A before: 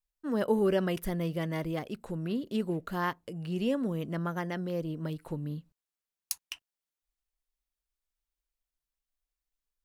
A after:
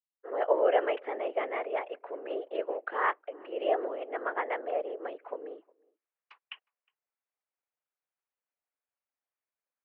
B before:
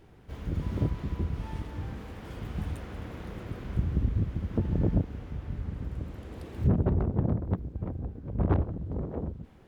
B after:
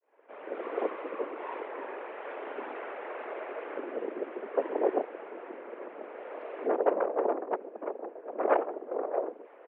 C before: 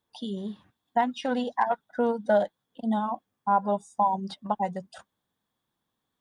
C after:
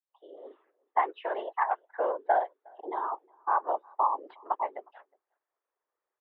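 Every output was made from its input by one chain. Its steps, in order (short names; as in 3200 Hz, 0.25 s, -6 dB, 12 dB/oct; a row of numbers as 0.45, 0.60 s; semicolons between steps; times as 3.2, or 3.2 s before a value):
opening faded in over 0.57 s; whisperiser; outdoor echo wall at 62 m, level -28 dB; mistuned SSB +86 Hz 360–2600 Hz; mismatched tape noise reduction decoder only; normalise peaks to -12 dBFS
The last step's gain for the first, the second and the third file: +4.0, +9.0, -2.5 dB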